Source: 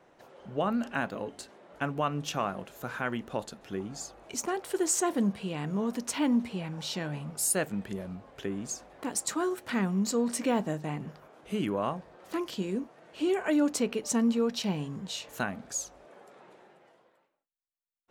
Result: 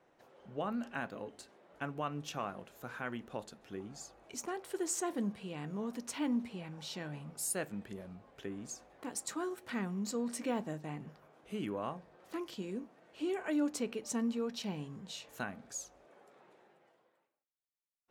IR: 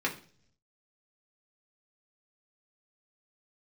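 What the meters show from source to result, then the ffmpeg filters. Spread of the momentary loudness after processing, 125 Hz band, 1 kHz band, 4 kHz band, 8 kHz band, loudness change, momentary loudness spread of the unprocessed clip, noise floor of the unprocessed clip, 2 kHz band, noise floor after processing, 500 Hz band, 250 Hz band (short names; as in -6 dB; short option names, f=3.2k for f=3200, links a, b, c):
13 LU, -9.0 dB, -8.0 dB, -8.5 dB, -8.5 dB, -8.0 dB, 12 LU, -69 dBFS, -7.5 dB, -77 dBFS, -8.0 dB, -8.0 dB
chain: -filter_complex "[0:a]asplit=2[a][b];[1:a]atrim=start_sample=2205[c];[b][c]afir=irnorm=-1:irlink=0,volume=-21dB[d];[a][d]amix=inputs=2:normalize=0,volume=-9dB"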